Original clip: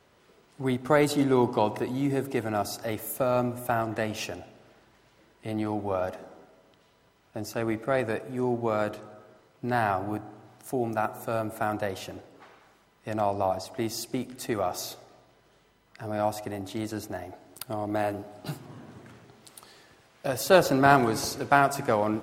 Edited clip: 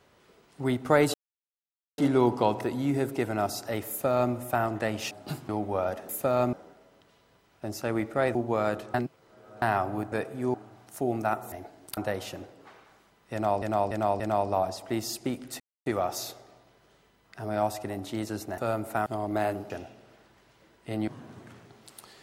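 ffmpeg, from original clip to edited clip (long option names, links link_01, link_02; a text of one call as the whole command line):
ffmpeg -i in.wav -filter_complex "[0:a]asplit=21[link_01][link_02][link_03][link_04][link_05][link_06][link_07][link_08][link_09][link_10][link_11][link_12][link_13][link_14][link_15][link_16][link_17][link_18][link_19][link_20][link_21];[link_01]atrim=end=1.14,asetpts=PTS-STARTPTS,afade=type=out:start_time=1.136:duration=0.004:curve=hsin,apad=pad_dur=0.84[link_22];[link_02]atrim=start=1.14:end=4.272,asetpts=PTS-STARTPTS,afade=type=in:duration=0.004:curve=hsin[link_23];[link_03]atrim=start=18.288:end=18.672[link_24];[link_04]atrim=start=5.648:end=6.252[link_25];[link_05]atrim=start=3.048:end=3.492[link_26];[link_06]atrim=start=6.248:end=8.072[link_27];[link_07]atrim=start=8.488:end=9.082[link_28];[link_08]atrim=start=9.078:end=9.762,asetpts=PTS-STARTPTS,areverse[link_29];[link_09]atrim=start=9.758:end=10.262[link_30];[link_10]atrim=start=8.068:end=8.492[link_31];[link_11]atrim=start=10.258:end=11.242[link_32];[link_12]atrim=start=17.198:end=17.652[link_33];[link_13]atrim=start=11.718:end=13.372[link_34];[link_14]atrim=start=13.078:end=13.372[link_35];[link_15]atrim=start=13.078:end=13.372[link_36];[link_16]atrim=start=13.078:end=14.48,asetpts=PTS-STARTPTS,afade=type=out:start_time=1.398:duration=0.004:curve=hsin,apad=pad_dur=0.26[link_37];[link_17]atrim=start=14.48:end=17.202,asetpts=PTS-STARTPTS,afade=type=in:duration=0.004:curve=hsin[link_38];[link_18]atrim=start=11.238:end=11.722[link_39];[link_19]atrim=start=17.648:end=18.292[link_40];[link_20]atrim=start=4.268:end=5.652[link_41];[link_21]atrim=start=18.668[link_42];[link_22][link_23]concat=n=2:v=0:a=1[link_43];[link_43][link_24]acrossfade=duration=0.004:curve1=hsin:curve2=hsin[link_44];[link_44][link_25]acrossfade=duration=0.004:curve1=hsin:curve2=hsin[link_45];[link_45][link_26]acrossfade=duration=0.004:curve1=hsin:curve2=hsin[link_46];[link_46][link_27]acrossfade=duration=0.004:curve1=hsin:curve2=hsin[link_47];[link_47][link_28]acrossfade=duration=0.004:curve1=hsin:curve2=hsin[link_48];[link_48][link_29]acrossfade=duration=0.004:curve1=hsin:curve2=hsin[link_49];[link_49][link_30]acrossfade=duration=0.004:curve1=hsin:curve2=hsin[link_50];[link_50][link_31]acrossfade=duration=0.004:curve1=hsin:curve2=hsin[link_51];[link_51][link_32]acrossfade=duration=0.004:curve1=hsin:curve2=hsin[link_52];[link_52][link_33]acrossfade=duration=0.004:curve1=hsin:curve2=hsin[link_53];[link_53][link_34]acrossfade=duration=0.004:curve1=hsin:curve2=hsin[link_54];[link_54][link_35]acrossfade=duration=0.004:curve1=hsin:curve2=hsin[link_55];[link_55][link_36]acrossfade=duration=0.004:curve1=hsin:curve2=hsin[link_56];[link_37][link_38]concat=n=2:v=0:a=1[link_57];[link_56][link_57]acrossfade=duration=0.004:curve1=hsin:curve2=hsin[link_58];[link_58][link_39]acrossfade=duration=0.004:curve1=hsin:curve2=hsin[link_59];[link_59][link_40]acrossfade=duration=0.004:curve1=hsin:curve2=hsin[link_60];[link_60][link_41]acrossfade=duration=0.004:curve1=hsin:curve2=hsin[link_61];[link_61][link_42]acrossfade=duration=0.004:curve1=hsin:curve2=hsin" out.wav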